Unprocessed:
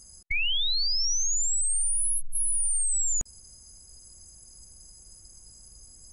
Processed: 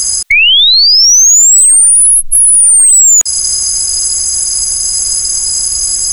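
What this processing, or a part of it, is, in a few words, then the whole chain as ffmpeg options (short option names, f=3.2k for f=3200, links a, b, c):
mastering chain: -filter_complex "[0:a]equalizer=f=3.5k:t=o:w=0.22:g=3.5,acrossover=split=350|2900|6700[a][b][c][d];[a]acompressor=threshold=-35dB:ratio=4[e];[b]acompressor=threshold=-41dB:ratio=4[f];[c]acompressor=threshold=-36dB:ratio=4[g];[d]acompressor=threshold=-33dB:ratio=4[h];[e][f][g][h]amix=inputs=4:normalize=0,acompressor=threshold=-33dB:ratio=2,tiltshelf=f=740:g=-9,asoftclip=type=hard:threshold=-23dB,alimiter=level_in=32dB:limit=-1dB:release=50:level=0:latency=1,volume=-1dB"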